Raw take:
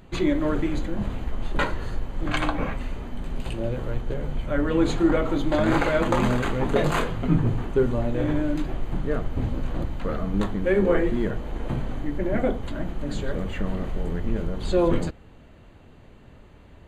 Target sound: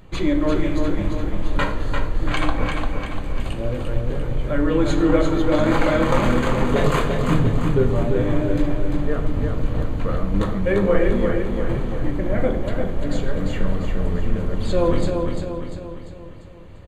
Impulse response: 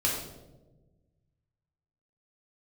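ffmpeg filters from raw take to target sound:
-filter_complex "[0:a]aecho=1:1:346|692|1038|1384|1730|2076:0.562|0.281|0.141|0.0703|0.0351|0.0176,asplit=2[a][b];[1:a]atrim=start_sample=2205[c];[b][c]afir=irnorm=-1:irlink=0,volume=-14.5dB[d];[a][d]amix=inputs=2:normalize=0"

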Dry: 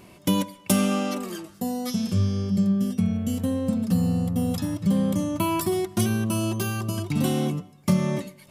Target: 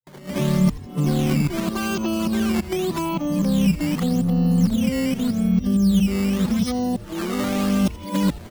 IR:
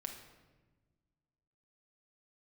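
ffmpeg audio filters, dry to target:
-filter_complex "[0:a]areverse,afftfilt=real='re*between(b*sr/4096,120,6800)':imag='im*between(b*sr/4096,120,6800)':win_size=4096:overlap=0.75,asplit=2[a][b];[b]alimiter=limit=-21.5dB:level=0:latency=1:release=128,volume=-0.5dB[c];[a][c]amix=inputs=2:normalize=0,acrossover=split=190[d][e];[e]acompressor=threshold=-26dB:ratio=10[f];[d][f]amix=inputs=2:normalize=0,acrusher=samples=10:mix=1:aa=0.000001:lfo=1:lforange=16:lforate=0.84,asplit=2[g][h];[h]asplit=5[i][j][k][l][m];[i]adelay=83,afreqshift=-140,volume=-17dB[n];[j]adelay=166,afreqshift=-280,volume=-22.2dB[o];[k]adelay=249,afreqshift=-420,volume=-27.4dB[p];[l]adelay=332,afreqshift=-560,volume=-32.6dB[q];[m]adelay=415,afreqshift=-700,volume=-37.8dB[r];[n][o][p][q][r]amix=inputs=5:normalize=0[s];[g][s]amix=inputs=2:normalize=0,volume=3.5dB"

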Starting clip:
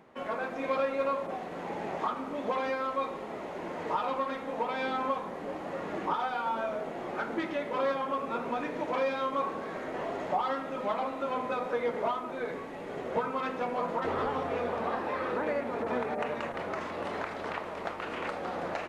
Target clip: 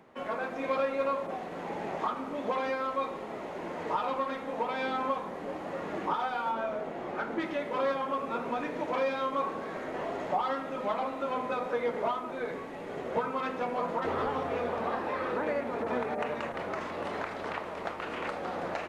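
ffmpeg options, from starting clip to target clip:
-filter_complex "[0:a]asettb=1/sr,asplit=3[a][b][c];[a]atrim=end=6.514[d];[b]atrim=start=6.51:end=7.41,asetpts=PTS-STARTPTS,afade=t=in:d=0.004:c=qsin,afade=t=out:st=0.896:d=0.004:c=qsin,highshelf=f=5.1k:g=-6.5[e];[c]atrim=start=7.406[f];[d][e]acrossfade=d=0.004:c1=hsin:c2=qsin[g];[g][f]acrossfade=d=0.004:c1=qsin:c2=hsin,acrossover=split=110[h][i];[h]acrusher=samples=14:mix=1:aa=0.000001[j];[j][i]amix=inputs=2:normalize=0"

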